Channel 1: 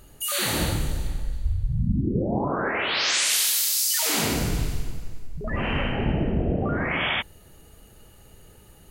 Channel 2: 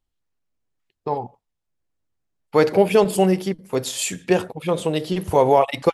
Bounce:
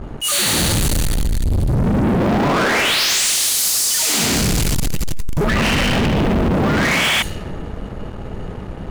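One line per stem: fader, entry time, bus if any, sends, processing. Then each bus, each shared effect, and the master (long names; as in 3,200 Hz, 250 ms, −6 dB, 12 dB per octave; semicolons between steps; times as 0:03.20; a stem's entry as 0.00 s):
+0.5 dB, 0.00 s, no send, high-shelf EQ 3,500 Hz +10.5 dB; speech leveller 2 s; brickwall limiter −18 dBFS, peak gain reduction 14.5 dB
−16.0 dB, 0.00 s, no send, high-pass filter 1,300 Hz 24 dB per octave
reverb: not used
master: low-pass that shuts in the quiet parts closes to 760 Hz, open at −21.5 dBFS; parametric band 200 Hz +5 dB 0.74 octaves; leveller curve on the samples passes 5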